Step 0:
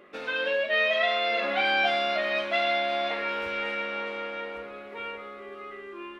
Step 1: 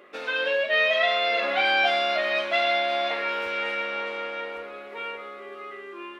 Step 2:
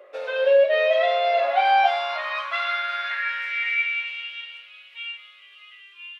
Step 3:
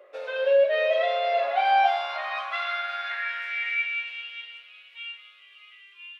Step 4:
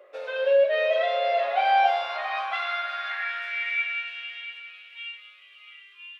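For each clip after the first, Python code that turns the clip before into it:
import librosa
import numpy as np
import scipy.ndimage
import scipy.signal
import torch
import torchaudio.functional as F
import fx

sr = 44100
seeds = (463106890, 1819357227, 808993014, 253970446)

y1 = fx.bass_treble(x, sr, bass_db=-10, treble_db=2)
y1 = y1 * librosa.db_to_amplitude(2.5)
y2 = fx.filter_sweep_highpass(y1, sr, from_hz=550.0, to_hz=2900.0, start_s=1.1, end_s=4.31, q=5.9)
y2 = y2 * librosa.db_to_amplitude(-5.0)
y3 = fx.rev_spring(y2, sr, rt60_s=2.7, pass_ms=(43, 52), chirp_ms=45, drr_db=14.0)
y3 = y3 * librosa.db_to_amplitude(-4.0)
y4 = fx.echo_feedback(y3, sr, ms=678, feedback_pct=17, wet_db=-13.5)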